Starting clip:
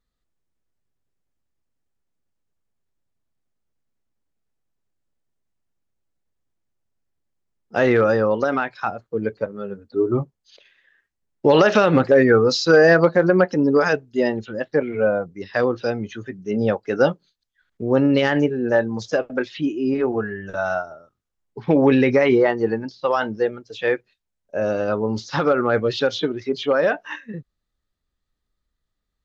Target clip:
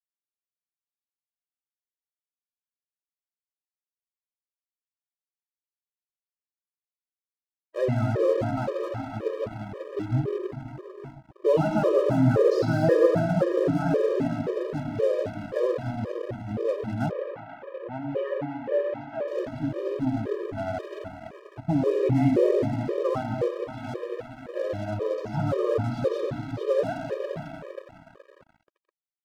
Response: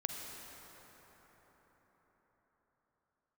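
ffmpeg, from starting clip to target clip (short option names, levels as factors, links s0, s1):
-filter_complex "[0:a]firequalizer=gain_entry='entry(110,0);entry(200,-10);entry(660,-8);entry(1700,-22)':delay=0.05:min_phase=1[s0];[1:a]atrim=start_sample=2205[s1];[s0][s1]afir=irnorm=-1:irlink=0,aeval=exprs='sgn(val(0))*max(abs(val(0))-0.00891,0)':c=same,asettb=1/sr,asplit=3[s2][s3][s4];[s2]atrim=end=17.114[s5];[s3]atrim=start=17.11:end=19.28,asetpts=PTS-STARTPTS,afade=t=in:d=0.004:c=qsin,afade=t=out:st=2.166:d=0.004:c=qsin,acrossover=split=430 2900:gain=0.158 1 0.0794[s6][s7][s8];[s6][s7][s8]amix=inputs=3:normalize=0[s9];[s4]atrim=start=19.276[s10];[s5][s9]acrossfade=d=0.004:c1=hsin:c2=qsin[s11];[s11][s10]acrossfade=d=0.004:c1=qsin:c2=hsin,afftfilt=real='re*gt(sin(2*PI*1.9*pts/sr)*(1-2*mod(floor(b*sr/1024/320),2)),0)':imag='im*gt(sin(2*PI*1.9*pts/sr)*(1-2*mod(floor(b*sr/1024/320),2)),0)':win_size=1024:overlap=0.75,volume=1.88"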